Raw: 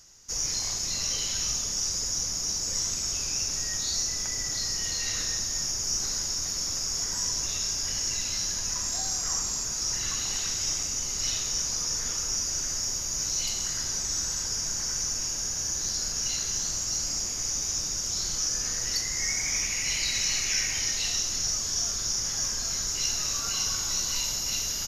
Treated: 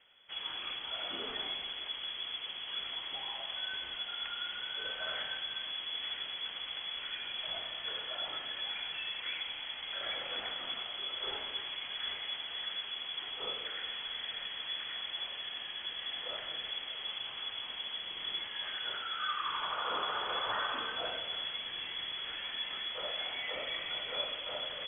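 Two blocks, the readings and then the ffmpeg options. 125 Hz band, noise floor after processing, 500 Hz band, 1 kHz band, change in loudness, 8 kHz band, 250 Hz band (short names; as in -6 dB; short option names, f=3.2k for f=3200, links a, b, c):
under -20 dB, -44 dBFS, +0.5 dB, +3.0 dB, -10.0 dB, under -40 dB, -11.5 dB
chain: -af "lowpass=f=2.9k:t=q:w=0.5098,lowpass=f=2.9k:t=q:w=0.6013,lowpass=f=2.9k:t=q:w=0.9,lowpass=f=2.9k:t=q:w=2.563,afreqshift=-3400"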